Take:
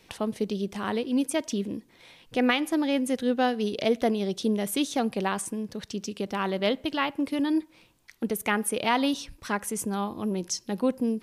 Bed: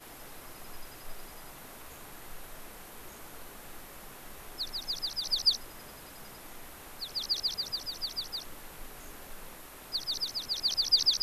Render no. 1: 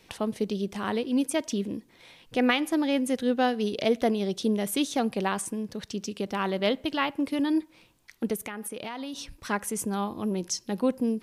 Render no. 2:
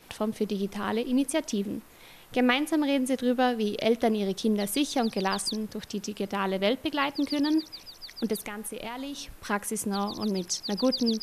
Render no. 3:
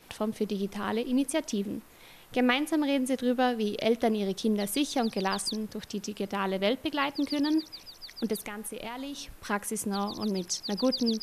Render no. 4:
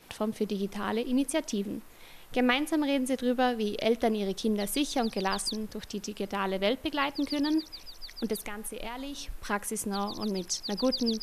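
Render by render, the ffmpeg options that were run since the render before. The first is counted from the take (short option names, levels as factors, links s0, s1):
-filter_complex "[0:a]asettb=1/sr,asplit=3[s0][s1][s2];[s0]atrim=end=8.354[s3];[s1]atrim=start=8.35:end=9.36,asetpts=PTS-STARTPTS,afade=t=in:d=0.004:c=qsin,afade=t=out:st=1.006:d=0.004:c=qsin,acompressor=threshold=0.0251:ratio=10:attack=3.2:release=140:knee=1:detection=peak[s4];[s2]atrim=start=9.356[s5];[s3][s4]acrossfade=d=0.004:c1=hsin:c2=qsin[s6];[s6][s5]acrossfade=d=0.004:c1=qsin:c2=hsin"
-filter_complex "[1:a]volume=0.422[s0];[0:a][s0]amix=inputs=2:normalize=0"
-af "volume=0.841"
-af "asubboost=boost=3.5:cutoff=60"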